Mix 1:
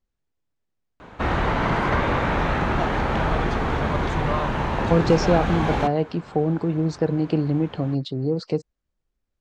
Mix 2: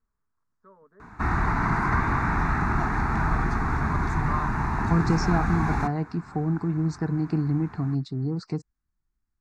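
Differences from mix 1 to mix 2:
first sound: unmuted
master: add phaser with its sweep stopped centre 1,300 Hz, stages 4

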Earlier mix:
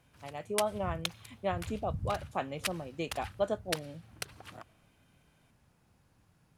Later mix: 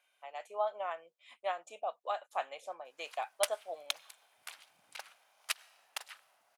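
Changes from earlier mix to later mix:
background: entry +2.85 s
master: add Chebyshev high-pass filter 660 Hz, order 3

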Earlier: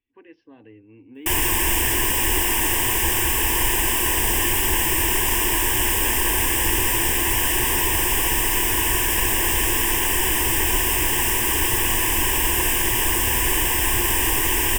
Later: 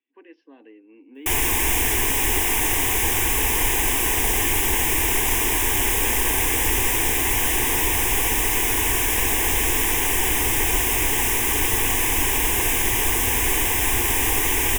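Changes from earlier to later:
speech: add Butterworth high-pass 250 Hz 36 dB per octave
background: remove EQ curve with evenly spaced ripples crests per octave 1.3, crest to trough 7 dB

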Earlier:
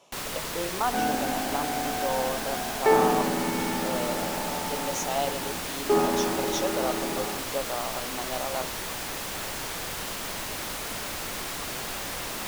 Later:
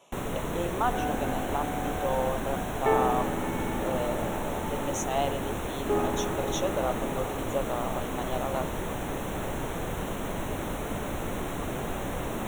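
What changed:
first sound: add tilt shelving filter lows +9 dB, about 1,100 Hz
second sound −5.0 dB
master: add Butterworth band-reject 4,800 Hz, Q 2.4

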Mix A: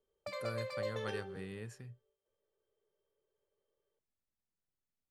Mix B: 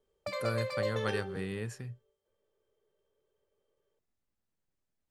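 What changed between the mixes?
speech +8.0 dB
background +5.5 dB

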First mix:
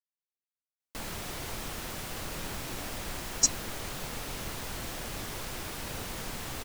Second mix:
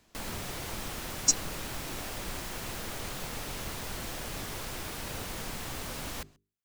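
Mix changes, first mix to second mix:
speech: entry −2.15 s
background: entry −0.80 s

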